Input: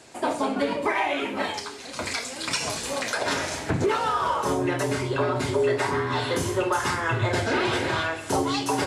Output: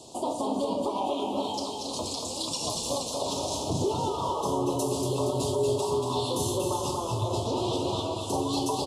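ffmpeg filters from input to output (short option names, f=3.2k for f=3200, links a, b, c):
-filter_complex "[0:a]asettb=1/sr,asplit=3[a][b][c];[a]atrim=end=4.694[d];[b]atrim=start=4.69:end=6.71,asetpts=PTS-STARTPTS,afade=t=in:d=0.004:c=qsin,afade=t=out:st=2.016:d=0.004:c=qsin,highshelf=f=6.6k:g=9.5[e];[c]atrim=start=6.706[f];[d][e]acrossfade=d=0.004:c1=hsin:c2=qsin[g];[g][f]acrossfade=d=0.004:c1=qsin:c2=hsin,alimiter=limit=-22.5dB:level=0:latency=1:release=326,asuperstop=centerf=1800:order=8:qfactor=0.9,aecho=1:1:235|470|705|940|1175|1410:0.562|0.276|0.135|0.0662|0.0324|0.0159,volume=3dB"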